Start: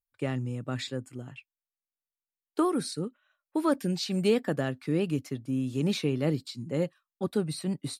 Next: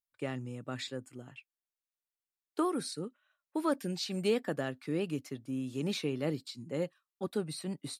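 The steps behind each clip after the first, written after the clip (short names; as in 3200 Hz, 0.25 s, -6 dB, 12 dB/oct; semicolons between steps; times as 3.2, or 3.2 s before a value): low shelf 160 Hz -9.5 dB; gain -3.5 dB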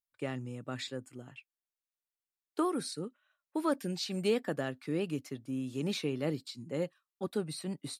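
nothing audible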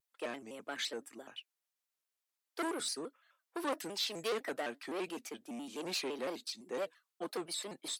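soft clip -33 dBFS, distortion -8 dB; Bessel high-pass 450 Hz, order 4; shaped vibrato square 5.9 Hz, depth 160 cents; gain +4.5 dB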